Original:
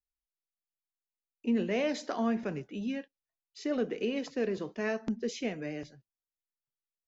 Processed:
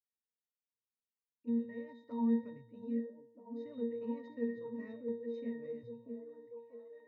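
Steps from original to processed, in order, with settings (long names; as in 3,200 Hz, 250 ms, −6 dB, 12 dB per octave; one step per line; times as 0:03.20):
dynamic equaliser 350 Hz, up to −6 dB, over −41 dBFS, Q 0.9
0:01.49–0:02.10: output level in coarse steps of 13 dB
0:04.93–0:05.34: bass and treble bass −13 dB, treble −13 dB
resonances in every octave A#, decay 0.51 s
echo through a band-pass that steps 639 ms, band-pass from 340 Hz, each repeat 0.7 octaves, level −2.5 dB
level +10 dB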